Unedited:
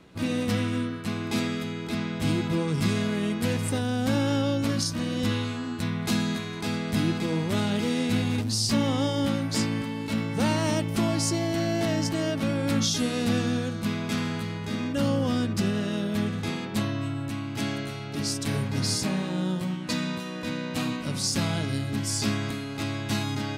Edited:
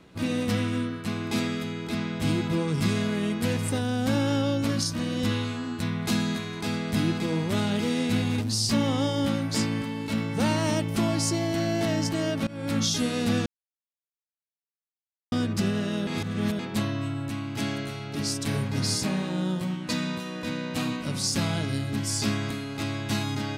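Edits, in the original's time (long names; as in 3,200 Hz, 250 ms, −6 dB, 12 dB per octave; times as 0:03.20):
0:12.47–0:12.94: fade in equal-power, from −22.5 dB
0:13.46–0:15.32: silence
0:16.07–0:16.59: reverse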